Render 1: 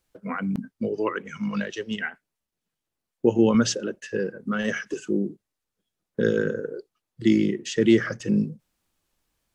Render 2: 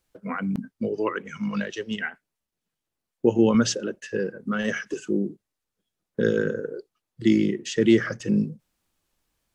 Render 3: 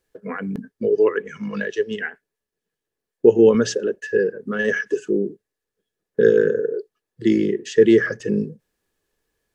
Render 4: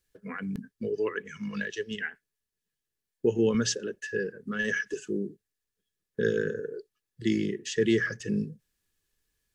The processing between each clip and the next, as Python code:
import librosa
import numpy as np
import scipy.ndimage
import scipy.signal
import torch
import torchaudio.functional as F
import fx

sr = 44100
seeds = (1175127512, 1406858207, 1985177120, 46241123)

y1 = x
y2 = fx.small_body(y1, sr, hz=(430.0, 1700.0), ring_ms=35, db=14)
y2 = y2 * librosa.db_to_amplitude(-1.5)
y3 = fx.peak_eq(y2, sr, hz=560.0, db=-14.0, octaves=2.7)